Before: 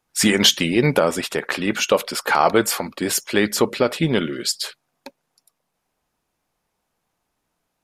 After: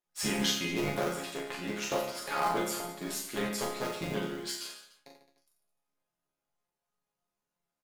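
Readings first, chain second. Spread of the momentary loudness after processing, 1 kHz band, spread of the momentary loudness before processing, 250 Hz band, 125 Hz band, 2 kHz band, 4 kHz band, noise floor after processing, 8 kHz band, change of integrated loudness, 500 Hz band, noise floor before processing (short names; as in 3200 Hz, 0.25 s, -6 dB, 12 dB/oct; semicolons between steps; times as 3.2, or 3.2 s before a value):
8 LU, -11.5 dB, 9 LU, -14.0 dB, -14.0 dB, -13.5 dB, -14.5 dB, under -85 dBFS, -13.0 dB, -14.0 dB, -14.5 dB, -76 dBFS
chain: cycle switcher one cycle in 3, muted; resonator bank C#3 major, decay 0.29 s; reverse bouncing-ball echo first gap 40 ms, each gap 1.2×, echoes 5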